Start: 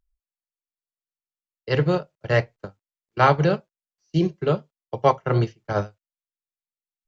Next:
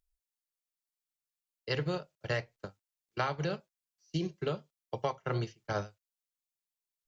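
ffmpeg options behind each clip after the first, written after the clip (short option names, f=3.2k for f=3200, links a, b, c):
-af "highshelf=f=2.6k:g=10.5,acompressor=threshold=-21dB:ratio=12,volume=-7.5dB"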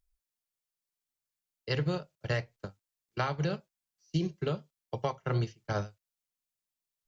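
-af "bass=f=250:g=5,treble=f=4k:g=1"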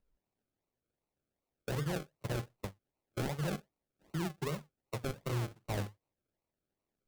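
-af "acrusher=samples=37:mix=1:aa=0.000001:lfo=1:lforange=22.2:lforate=2.6,alimiter=level_in=5dB:limit=-24dB:level=0:latency=1:release=19,volume=-5dB"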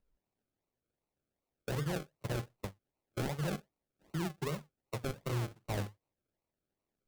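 -af anull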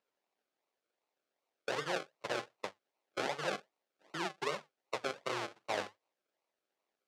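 -af "highpass=530,lowpass=5.5k,volume=6dB"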